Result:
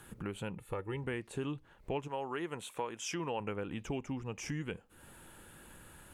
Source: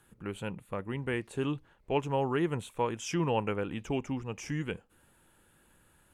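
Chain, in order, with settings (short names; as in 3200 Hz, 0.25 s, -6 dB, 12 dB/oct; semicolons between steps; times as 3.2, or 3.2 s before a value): 0.58–1.04 comb 2.3 ms, depth 68%; 2.07–3.39 HPF 650 Hz -> 310 Hz 6 dB/oct; compressor 2.5:1, threshold -52 dBFS, peak gain reduction 18.5 dB; gain +9.5 dB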